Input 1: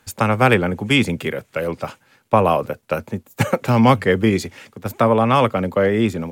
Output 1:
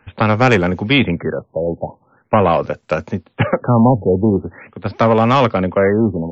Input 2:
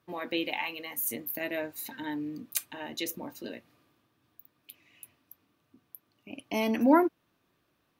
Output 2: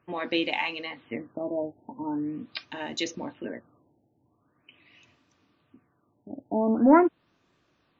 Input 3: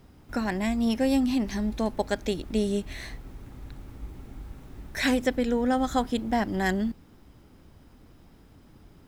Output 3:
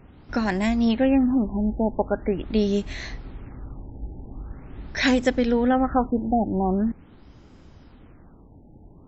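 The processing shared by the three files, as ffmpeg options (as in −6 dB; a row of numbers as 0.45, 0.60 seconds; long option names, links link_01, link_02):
-af "acontrast=86,afftfilt=real='re*lt(b*sr/1024,890*pow(7900/890,0.5+0.5*sin(2*PI*0.43*pts/sr)))':imag='im*lt(b*sr/1024,890*pow(7900/890,0.5+0.5*sin(2*PI*0.43*pts/sr)))':win_size=1024:overlap=0.75,volume=-2.5dB"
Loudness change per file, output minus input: +2.5, +3.5, +4.0 LU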